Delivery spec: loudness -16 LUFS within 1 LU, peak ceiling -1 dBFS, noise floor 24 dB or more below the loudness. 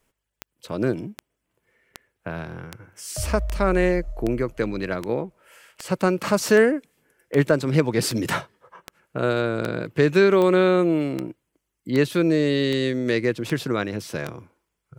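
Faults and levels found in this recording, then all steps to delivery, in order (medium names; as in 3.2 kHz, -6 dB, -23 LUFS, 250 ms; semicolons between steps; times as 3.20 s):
clicks found 19; loudness -22.5 LUFS; peak level -5.5 dBFS; loudness target -16.0 LUFS
-> de-click; trim +6.5 dB; peak limiter -1 dBFS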